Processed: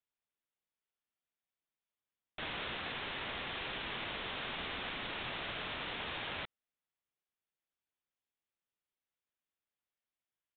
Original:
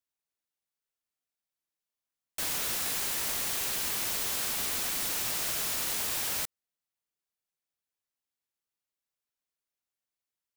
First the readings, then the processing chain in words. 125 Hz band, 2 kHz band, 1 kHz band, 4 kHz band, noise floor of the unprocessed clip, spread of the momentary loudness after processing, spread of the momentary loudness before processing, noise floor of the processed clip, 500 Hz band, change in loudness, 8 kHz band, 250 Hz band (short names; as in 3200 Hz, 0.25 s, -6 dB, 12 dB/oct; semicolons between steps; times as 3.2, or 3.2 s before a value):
-1.5 dB, -1.5 dB, -1.5 dB, -5.5 dB, under -85 dBFS, 2 LU, 2 LU, under -85 dBFS, -1.5 dB, -10.5 dB, under -40 dB, -1.5 dB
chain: downsampling 8000 Hz; gain -1.5 dB